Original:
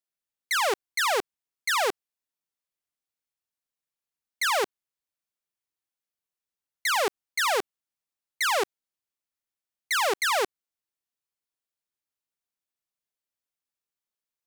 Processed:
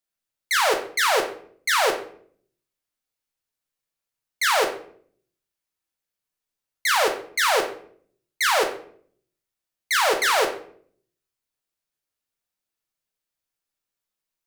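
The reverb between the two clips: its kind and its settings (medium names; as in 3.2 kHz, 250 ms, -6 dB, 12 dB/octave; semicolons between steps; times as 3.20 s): simulated room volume 67 m³, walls mixed, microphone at 0.55 m; trim +3 dB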